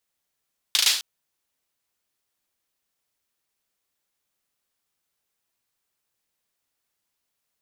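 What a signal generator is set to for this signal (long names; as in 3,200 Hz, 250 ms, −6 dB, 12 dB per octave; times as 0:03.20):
synth clap length 0.26 s, bursts 4, apart 37 ms, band 3,900 Hz, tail 0.46 s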